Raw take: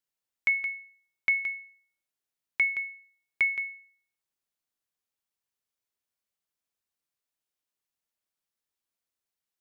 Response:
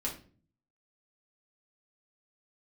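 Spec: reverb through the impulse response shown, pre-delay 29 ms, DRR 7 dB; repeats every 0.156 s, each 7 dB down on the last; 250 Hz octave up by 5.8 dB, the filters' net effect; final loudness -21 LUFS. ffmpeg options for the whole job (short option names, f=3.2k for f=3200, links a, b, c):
-filter_complex "[0:a]equalizer=f=250:t=o:g=7.5,aecho=1:1:156|312|468|624|780:0.447|0.201|0.0905|0.0407|0.0183,asplit=2[a][b];[1:a]atrim=start_sample=2205,adelay=29[c];[b][c]afir=irnorm=-1:irlink=0,volume=-9.5dB[d];[a][d]amix=inputs=2:normalize=0,volume=5dB"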